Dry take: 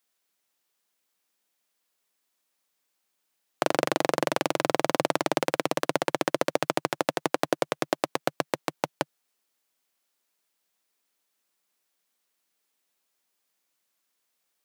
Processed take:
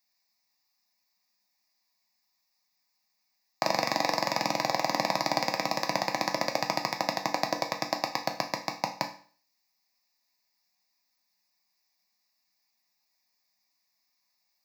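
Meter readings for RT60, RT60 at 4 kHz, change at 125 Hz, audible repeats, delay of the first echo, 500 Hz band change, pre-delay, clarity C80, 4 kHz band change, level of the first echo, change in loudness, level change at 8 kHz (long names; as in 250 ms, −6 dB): 0.45 s, 0.45 s, −2.5 dB, no echo audible, no echo audible, −5.5 dB, 4 ms, 15.0 dB, +2.5 dB, no echo audible, −1.5 dB, −1.0 dB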